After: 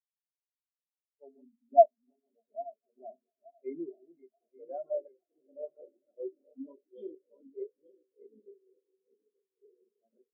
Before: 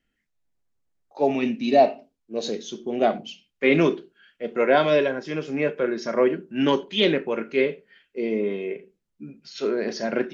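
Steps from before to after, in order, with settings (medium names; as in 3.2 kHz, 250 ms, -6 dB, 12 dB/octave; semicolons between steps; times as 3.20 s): backward echo that repeats 440 ms, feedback 73%, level -5 dB; hum notches 60/120/180/240/300/360/420/480/540 Hz; echo with a slow build-up 151 ms, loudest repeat 5, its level -17.5 dB; spectral contrast expander 4:1; trim -4 dB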